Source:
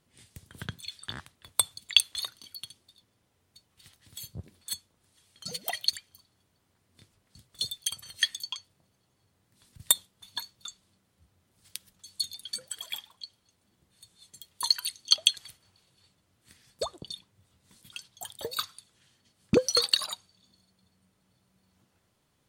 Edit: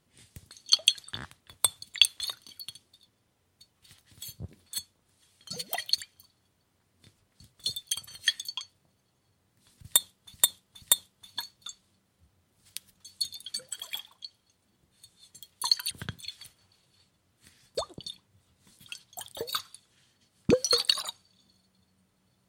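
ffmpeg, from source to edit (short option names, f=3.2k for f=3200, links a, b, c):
-filter_complex "[0:a]asplit=7[a][b][c][d][e][f][g];[a]atrim=end=0.512[h];[b]atrim=start=14.898:end=15.422[i];[c]atrim=start=0.978:end=10.292[j];[d]atrim=start=9.808:end=10.292[k];[e]atrim=start=9.808:end=14.902[l];[f]atrim=start=0.508:end=0.982[m];[g]atrim=start=15.418[n];[h][i]acrossfade=d=0.004:c1=hsin:c2=hsin[o];[o][j]acrossfade=d=0.004:c1=hsin:c2=hsin[p];[p][k]acrossfade=d=0.004:c1=hsin:c2=hsin[q];[q][l]acrossfade=d=0.004:c1=hsin:c2=hsin[r];[r][m]acrossfade=d=0.004:c1=hsin:c2=hsin[s];[s][n]acrossfade=d=0.004:c1=hsin:c2=hsin"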